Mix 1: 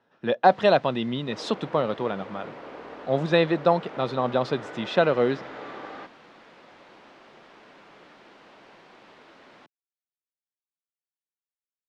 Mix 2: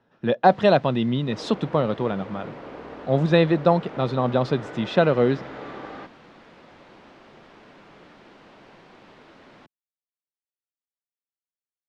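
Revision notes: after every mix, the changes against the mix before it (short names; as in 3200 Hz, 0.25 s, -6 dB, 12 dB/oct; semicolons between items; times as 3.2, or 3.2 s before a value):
master: add low shelf 220 Hz +11.5 dB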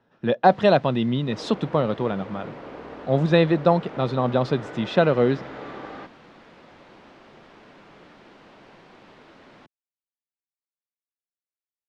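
none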